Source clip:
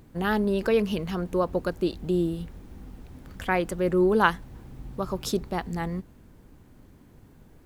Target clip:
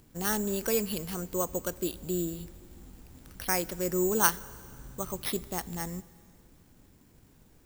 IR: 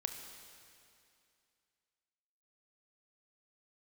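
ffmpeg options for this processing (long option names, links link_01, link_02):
-filter_complex "[0:a]acrusher=samples=6:mix=1:aa=0.000001,crystalizer=i=2.5:c=0,asplit=2[link_01][link_02];[1:a]atrim=start_sample=2205,highshelf=frequency=12000:gain=5.5[link_03];[link_02][link_03]afir=irnorm=-1:irlink=0,volume=-11dB[link_04];[link_01][link_04]amix=inputs=2:normalize=0,volume=-9dB"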